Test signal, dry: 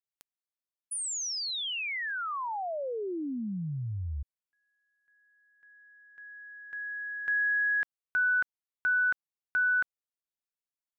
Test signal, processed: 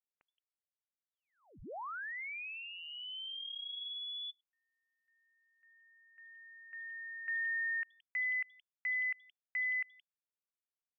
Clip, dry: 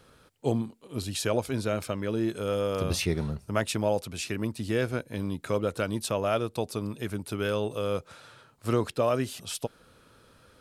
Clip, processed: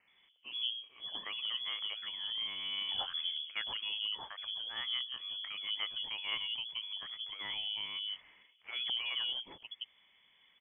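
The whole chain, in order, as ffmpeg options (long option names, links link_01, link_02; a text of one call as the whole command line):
ffmpeg -i in.wav -filter_complex "[0:a]acrossover=split=220|670[link_01][link_02][link_03];[link_01]adelay=70[link_04];[link_02]adelay=170[link_05];[link_04][link_05][link_03]amix=inputs=3:normalize=0,lowpass=frequency=3000:width_type=q:width=0.5098,lowpass=frequency=3000:width_type=q:width=0.6013,lowpass=frequency=3000:width_type=q:width=0.9,lowpass=frequency=3000:width_type=q:width=2.563,afreqshift=-3500,volume=-8dB" out.wav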